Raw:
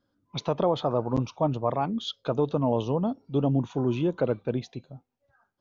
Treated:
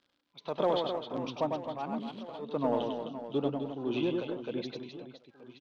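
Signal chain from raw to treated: 1.86–2.39 s: median filter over 25 samples; high-pass 240 Hz 12 dB/octave; crackle 100 per s -52 dBFS; resonant low-pass 3.8 kHz, resonance Q 1.7; in parallel at -5.5 dB: hard clipper -21.5 dBFS, distortion -13 dB; on the sum: tremolo 1.5 Hz, depth 91%; on a send: reverse bouncing-ball echo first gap 100 ms, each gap 1.6×, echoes 5; on the sum: trim -6.5 dB

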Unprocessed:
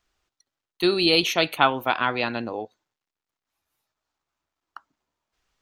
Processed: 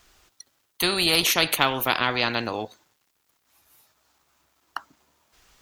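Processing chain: Chebyshev shaper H 3 -43 dB, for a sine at -2 dBFS; treble shelf 8.1 kHz +9 dB; spectrum-flattening compressor 2:1

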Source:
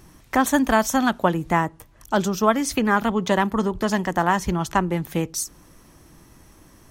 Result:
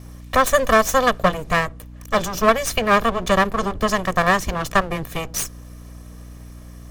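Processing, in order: comb filter that takes the minimum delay 1.7 ms; hum 60 Hz, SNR 18 dB; trim +4 dB

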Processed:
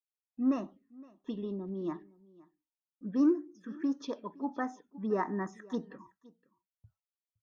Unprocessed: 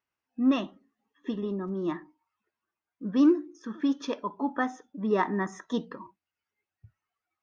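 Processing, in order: gate with hold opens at -57 dBFS; touch-sensitive phaser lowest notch 310 Hz, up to 3.3 kHz, full sweep at -25 dBFS; delay 515 ms -23 dB; trim -5 dB

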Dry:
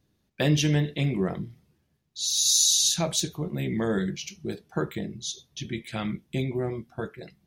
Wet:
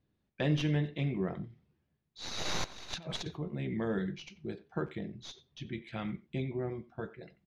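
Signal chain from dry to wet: tracing distortion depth 0.077 ms; low-pass 3.2 kHz 12 dB/octave; 2.64–3.37 s: compressor with a negative ratio -33 dBFS, ratio -0.5; speakerphone echo 90 ms, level -17 dB; trim -7 dB

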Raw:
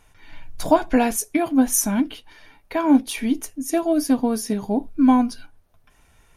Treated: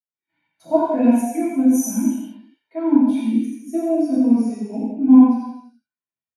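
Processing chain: rattle on loud lows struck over -26 dBFS, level -27 dBFS; high-pass 110 Hz 24 dB/octave; gate -49 dBFS, range -11 dB; 4.01–5.22 s: low-pass 10 kHz 24 dB/octave; on a send: delay 85 ms -3.5 dB; on the sum: gated-style reverb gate 460 ms falling, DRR -7.5 dB; spectral contrast expander 1.5:1; trim -5.5 dB

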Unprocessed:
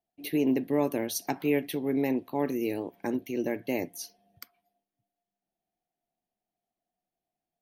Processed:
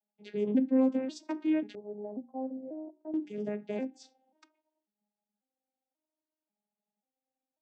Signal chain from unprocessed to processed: vocoder on a broken chord major triad, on G#3, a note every 540 ms; 1.75–3.14 s: four-pole ladder low-pass 790 Hz, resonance 70%; hum notches 60/120/180/240/300/360 Hz

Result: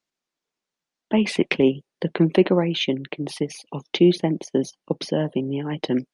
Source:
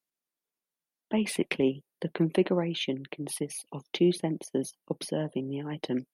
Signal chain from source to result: low-pass 7.1 kHz 24 dB/octave; trim +8 dB

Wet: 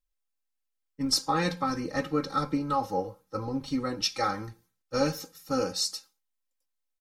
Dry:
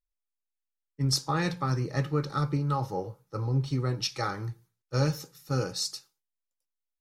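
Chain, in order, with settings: comb 3.8 ms, depth 88%

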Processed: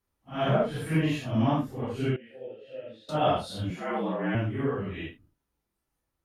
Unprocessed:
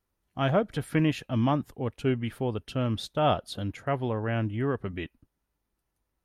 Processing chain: phase randomisation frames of 200 ms; 2.16–3.09 s: vowel filter e; 3.70–4.35 s: frequency shift +75 Hz

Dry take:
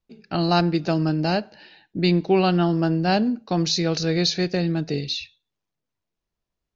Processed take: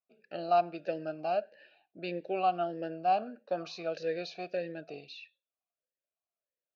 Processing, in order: 3.18–3.83 s: peaking EQ 1.2 kHz +11 dB 0.87 oct; talking filter a-e 1.6 Hz

